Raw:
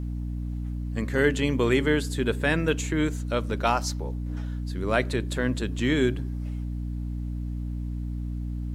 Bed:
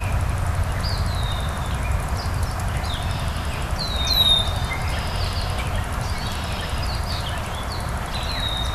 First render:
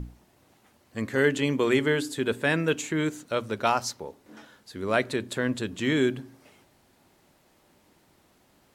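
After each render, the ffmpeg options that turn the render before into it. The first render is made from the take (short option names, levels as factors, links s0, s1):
-af "bandreject=f=60:t=h:w=6,bandreject=f=120:t=h:w=6,bandreject=f=180:t=h:w=6,bandreject=f=240:t=h:w=6,bandreject=f=300:t=h:w=6"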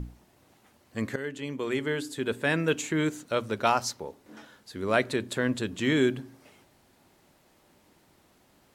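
-filter_complex "[0:a]asplit=2[s0][s1];[s0]atrim=end=1.16,asetpts=PTS-STARTPTS,afade=t=out:st=1.156:d=0.004:c=hsin:silence=0.177828[s2];[s1]atrim=start=1.16,asetpts=PTS-STARTPTS,afade=t=in:d=1.7:silence=0.177828[s3];[s2][s3]concat=n=2:v=0:a=1"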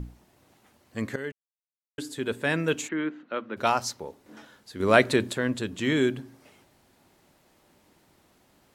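-filter_complex "[0:a]asplit=3[s0][s1][s2];[s0]afade=t=out:st=2.87:d=0.02[s3];[s1]highpass=f=220:w=0.5412,highpass=f=220:w=1.3066,equalizer=f=430:t=q:w=4:g=-7,equalizer=f=630:t=q:w=4:g=-5,equalizer=f=910:t=q:w=4:g=-4,equalizer=f=2300:t=q:w=4:g=-4,lowpass=f=2700:w=0.5412,lowpass=f=2700:w=1.3066,afade=t=in:st=2.87:d=0.02,afade=t=out:st=3.56:d=0.02[s4];[s2]afade=t=in:st=3.56:d=0.02[s5];[s3][s4][s5]amix=inputs=3:normalize=0,asplit=5[s6][s7][s8][s9][s10];[s6]atrim=end=1.32,asetpts=PTS-STARTPTS,afade=t=out:st=1.316:d=0.004:c=hsin[s11];[s7]atrim=start=1.32:end=1.98,asetpts=PTS-STARTPTS,volume=0[s12];[s8]atrim=start=1.98:end=4.802,asetpts=PTS-STARTPTS,afade=t=in:d=0.004:c=hsin[s13];[s9]atrim=start=4.798:end=5.322,asetpts=PTS-STARTPTS,volume=2[s14];[s10]atrim=start=5.318[s15];[s11][s12][s13]concat=n=3:v=0:a=1[s16];[s16][s14]acrossfade=d=0.004:c1=hsin:c2=hsin[s17];[s17][s15]acrossfade=d=0.004:c1=hsin:c2=hsin"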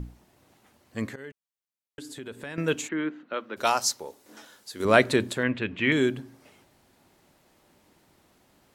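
-filter_complex "[0:a]asettb=1/sr,asplit=3[s0][s1][s2];[s0]atrim=end=1.094[s3];[s1]atrim=start=1.09:end=2.58,asetpts=PTS-STARTPTS,afade=t=in:d=0.004:c=qsin,afade=t=out:st=1.486:d=0.004:c=qsin,acompressor=threshold=0.0126:ratio=3:attack=3.2:release=140:knee=1:detection=peak[s4];[s2]atrim=start=2.576[s5];[s3][s4]acrossfade=d=0.004:c1=hsin:c2=qsin[s6];[s6][s5]acrossfade=d=0.004:c1=qsin:c2=hsin,asettb=1/sr,asplit=3[s7][s8][s9];[s7]atrim=end=3.334[s10];[s8]atrim=start=3.33:end=4.85,asetpts=PTS-STARTPTS,afade=t=in:d=0.004:c=qsin,afade=t=out:st=1.516:d=0.004:c=qsin,bass=f=250:g=-9,treble=f=4000:g=9[s11];[s9]atrim=start=4.846[s12];[s10][s11]acrossfade=d=0.004:c1=hsin:c2=qsin[s13];[s13][s12]acrossfade=d=0.004:c1=qsin:c2=hsin,asettb=1/sr,asplit=3[s14][s15][s16];[s14]atrim=end=5.434[s17];[s15]atrim=start=5.43:end=5.92,asetpts=PTS-STARTPTS,afade=t=in:d=0.004:c=qsin,afade=t=out:st=0.486:d=0.004:c=qsin,lowpass=f=2400:t=q:w=3.2[s18];[s16]atrim=start=5.916[s19];[s17][s18]acrossfade=d=0.004:c1=hsin:c2=qsin[s20];[s20][s19]acrossfade=d=0.004:c1=qsin:c2=hsin"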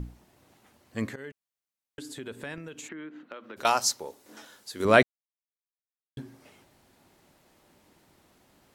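-filter_complex "[0:a]asettb=1/sr,asplit=3[s0][s1][s2];[s0]atrim=end=2.544[s3];[s1]atrim=start=2.54:end=3.65,asetpts=PTS-STARTPTS,afade=t=in:d=0.004:c=qsin,afade=t=out:st=1.106:d=0.004:c=qsin,acompressor=threshold=0.0141:ratio=20:attack=3.2:release=140:knee=1:detection=peak[s4];[s2]atrim=start=3.646[s5];[s3][s4]acrossfade=d=0.004:c1=hsin:c2=qsin[s6];[s6][s5]acrossfade=d=0.004:c1=qsin:c2=hsin,asplit=3[s7][s8][s9];[s7]atrim=end=5.03,asetpts=PTS-STARTPTS,afade=t=out:st=5.026:d=0.004:c=hsin[s10];[s8]atrim=start=5.03:end=6.17,asetpts=PTS-STARTPTS,volume=0[s11];[s9]atrim=start=6.17,asetpts=PTS-STARTPTS,afade=t=in:d=0.004:c=hsin[s12];[s10][s11][s12]concat=n=3:v=0:a=1"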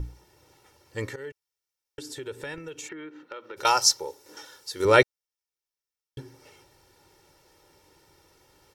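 -af "equalizer=f=5500:w=5:g=8.5,aecho=1:1:2.2:0.8"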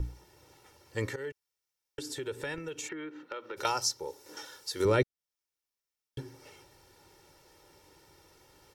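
-filter_complex "[0:a]acrossover=split=330[s0][s1];[s1]acompressor=threshold=0.0282:ratio=3[s2];[s0][s2]amix=inputs=2:normalize=0"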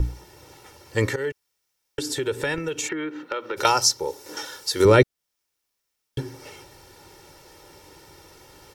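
-af "volume=3.55"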